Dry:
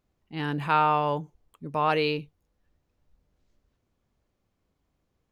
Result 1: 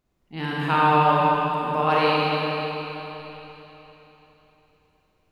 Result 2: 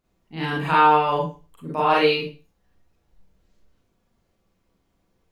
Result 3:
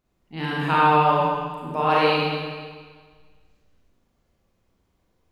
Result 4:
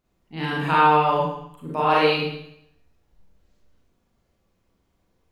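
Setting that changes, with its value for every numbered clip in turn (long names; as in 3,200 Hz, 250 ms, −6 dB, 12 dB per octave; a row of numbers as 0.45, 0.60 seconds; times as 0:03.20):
four-comb reverb, RT60: 3.6, 0.32, 1.6, 0.73 seconds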